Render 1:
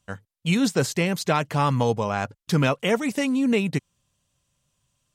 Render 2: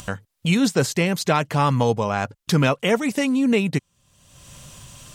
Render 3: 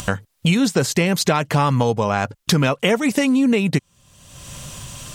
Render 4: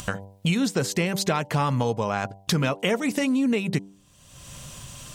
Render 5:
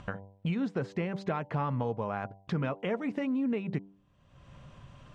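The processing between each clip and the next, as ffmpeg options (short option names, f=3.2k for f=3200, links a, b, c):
-af "acompressor=mode=upward:threshold=-23dB:ratio=2.5,volume=2.5dB"
-af "acompressor=threshold=-22dB:ratio=6,volume=8dB"
-af "bandreject=f=97.79:t=h:w=4,bandreject=f=195.58:t=h:w=4,bandreject=f=293.37:t=h:w=4,bandreject=f=391.16:t=h:w=4,bandreject=f=488.95:t=h:w=4,bandreject=f=586.74:t=h:w=4,bandreject=f=684.53:t=h:w=4,bandreject=f=782.32:t=h:w=4,bandreject=f=880.11:t=h:w=4,bandreject=f=977.9:t=h:w=4,volume=-6dB"
-af "lowpass=1.8k,volume=-7.5dB"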